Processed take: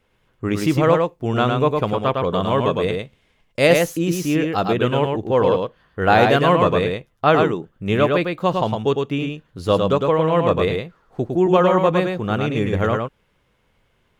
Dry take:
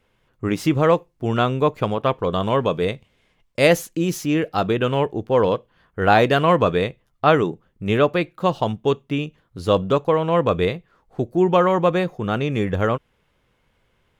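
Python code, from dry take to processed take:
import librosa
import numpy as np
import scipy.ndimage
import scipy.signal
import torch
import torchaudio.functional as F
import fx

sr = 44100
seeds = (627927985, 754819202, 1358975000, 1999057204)

y = x + 10.0 ** (-4.0 / 20.0) * np.pad(x, (int(107 * sr / 1000.0), 0))[:len(x)]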